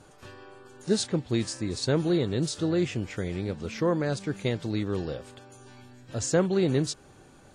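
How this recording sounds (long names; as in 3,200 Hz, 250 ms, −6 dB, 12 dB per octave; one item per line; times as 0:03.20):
background noise floor −54 dBFS
spectral slope −5.5 dB per octave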